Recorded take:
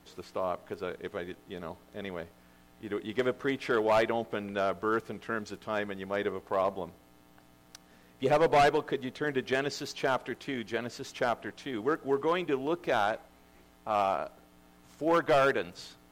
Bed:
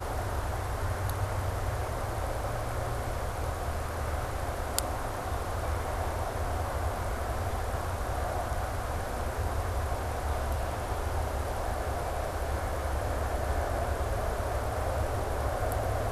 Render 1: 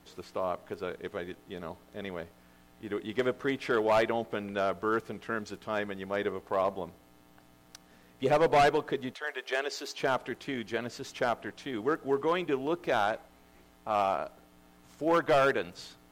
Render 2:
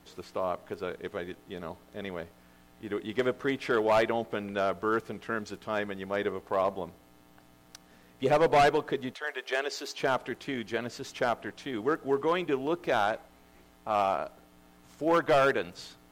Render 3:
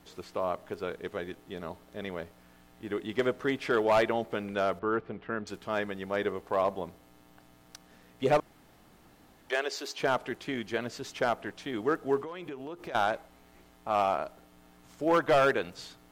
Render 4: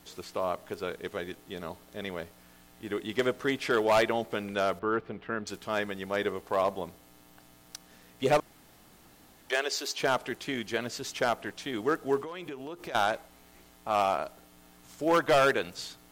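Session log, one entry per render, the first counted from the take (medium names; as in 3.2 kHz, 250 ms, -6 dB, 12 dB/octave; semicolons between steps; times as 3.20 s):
9.13–9.98 s: high-pass 680 Hz -> 270 Hz 24 dB/octave
trim +1 dB
4.79–5.47 s: distance through air 390 m; 8.40–9.50 s: room tone; 12.21–12.95 s: compression 12:1, threshold -36 dBFS
treble shelf 3.4 kHz +8.5 dB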